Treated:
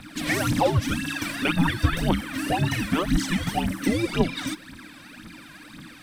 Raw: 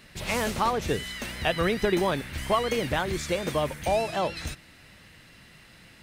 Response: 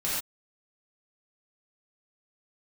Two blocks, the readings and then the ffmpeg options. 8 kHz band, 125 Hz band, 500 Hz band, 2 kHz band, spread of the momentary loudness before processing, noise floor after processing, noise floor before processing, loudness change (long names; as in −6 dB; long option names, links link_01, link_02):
+3.0 dB, +8.5 dB, −3.0 dB, +3.5 dB, 6 LU, −46 dBFS, −53 dBFS, +2.5 dB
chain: -filter_complex "[0:a]bandreject=frequency=7300:width=16,asplit=2[link_01][link_02];[link_02]acompressor=threshold=-35dB:ratio=6,volume=0dB[link_03];[link_01][link_03]amix=inputs=2:normalize=0,aphaser=in_gain=1:out_gain=1:delay=2.3:decay=0.73:speed=1.9:type=triangular,afreqshift=-340,volume=-2dB"